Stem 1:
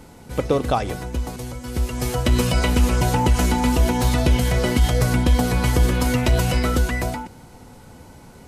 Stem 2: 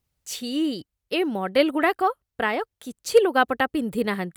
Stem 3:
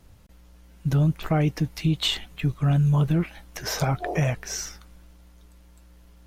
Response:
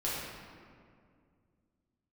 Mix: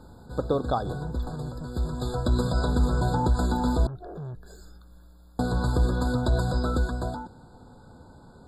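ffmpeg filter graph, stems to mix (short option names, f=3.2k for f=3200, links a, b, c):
-filter_complex "[0:a]bandreject=f=1.7k:w=18,adynamicsmooth=sensitivity=1:basefreq=7k,volume=-5.5dB,asplit=3[a][b][c];[a]atrim=end=3.87,asetpts=PTS-STARTPTS,afade=t=out:st=3.866:d=0.004:c=hsin[d];[b]atrim=start=3.87:end=5.39,asetpts=PTS-STARTPTS,volume=0[e];[c]atrim=start=5.39,asetpts=PTS-STARTPTS,afade=t=in:d=0.004:c=hsin[f];[d][e][f]concat=n=3:v=0:a=1[g];[2:a]adynamicequalizer=threshold=0.00891:dfrequency=420:dqfactor=1.6:tfrequency=420:tqfactor=1.6:attack=5:release=100:ratio=0.375:range=1.5:mode=cutabove:tftype=bell,acrossover=split=200|520[h][i][j];[h]acompressor=threshold=-25dB:ratio=4[k];[i]acompressor=threshold=-35dB:ratio=4[l];[j]acompressor=threshold=-47dB:ratio=4[m];[k][l][m]amix=inputs=3:normalize=0,asoftclip=type=tanh:threshold=-33dB,volume=-1dB[n];[g][n]amix=inputs=2:normalize=0,afftfilt=real='re*eq(mod(floor(b*sr/1024/1700),2),0)':imag='im*eq(mod(floor(b*sr/1024/1700),2),0)':win_size=1024:overlap=0.75"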